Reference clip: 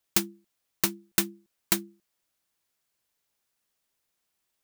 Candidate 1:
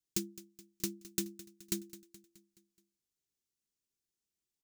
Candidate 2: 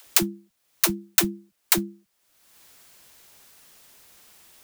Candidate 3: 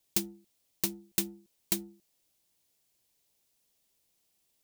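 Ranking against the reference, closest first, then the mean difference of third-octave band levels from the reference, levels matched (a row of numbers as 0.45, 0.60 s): 3, 2, 1; 3.5, 5.0, 8.0 dB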